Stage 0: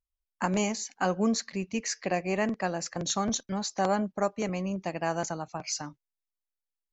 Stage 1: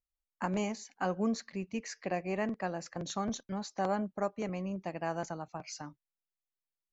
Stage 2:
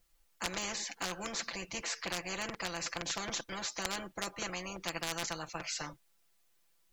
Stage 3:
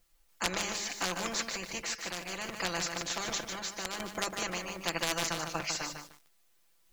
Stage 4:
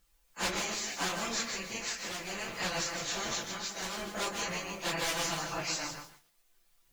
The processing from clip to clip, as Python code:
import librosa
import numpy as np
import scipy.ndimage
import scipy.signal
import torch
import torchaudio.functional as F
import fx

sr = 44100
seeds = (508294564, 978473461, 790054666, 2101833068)

y1 = fx.high_shelf(x, sr, hz=4300.0, db=-10.5)
y1 = y1 * librosa.db_to_amplitude(-5.0)
y2 = y1 + 0.88 * np.pad(y1, (int(5.9 * sr / 1000.0), 0))[:len(y1)]
y2 = 10.0 ** (-21.0 / 20.0) * (np.abs((y2 / 10.0 ** (-21.0 / 20.0) + 3.0) % 4.0 - 2.0) - 1.0)
y2 = fx.spectral_comp(y2, sr, ratio=4.0)
y2 = y2 * librosa.db_to_amplitude(7.5)
y3 = fx.hum_notches(y2, sr, base_hz=50, count=4)
y3 = fx.tremolo_random(y3, sr, seeds[0], hz=3.5, depth_pct=55)
y3 = fx.echo_crushed(y3, sr, ms=150, feedback_pct=35, bits=9, wet_db=-5.5)
y3 = y3 * librosa.db_to_amplitude(5.0)
y4 = fx.phase_scramble(y3, sr, seeds[1], window_ms=100)